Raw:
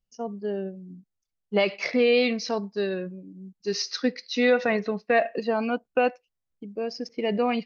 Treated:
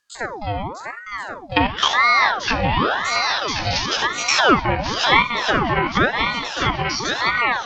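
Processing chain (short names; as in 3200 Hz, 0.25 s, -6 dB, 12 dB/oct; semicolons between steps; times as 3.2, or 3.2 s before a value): stepped spectrum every 50 ms; high shelf 2600 Hz +7.5 dB; swung echo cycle 1.081 s, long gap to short 1.5:1, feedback 40%, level -5.5 dB; Schroeder reverb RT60 0.35 s, combs from 28 ms, DRR 15 dB; treble ducked by the level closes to 1200 Hz, closed at -19.5 dBFS; bell 3600 Hz +11.5 dB 2.5 oct; de-hum 212.8 Hz, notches 34; ring modulator with a swept carrier 1000 Hz, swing 70%, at 0.95 Hz; gain +7 dB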